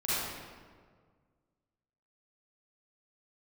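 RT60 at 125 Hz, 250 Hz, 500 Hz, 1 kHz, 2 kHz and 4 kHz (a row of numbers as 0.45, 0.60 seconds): 2.3, 2.0, 1.8, 1.6, 1.3, 1.0 seconds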